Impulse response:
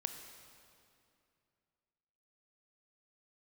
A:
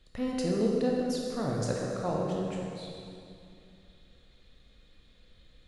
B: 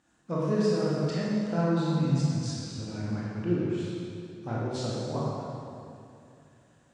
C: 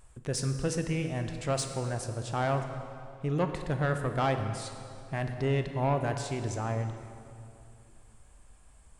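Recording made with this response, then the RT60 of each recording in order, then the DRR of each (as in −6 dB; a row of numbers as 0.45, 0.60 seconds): C; 2.6, 2.6, 2.6 seconds; −2.0, −7.5, 6.5 decibels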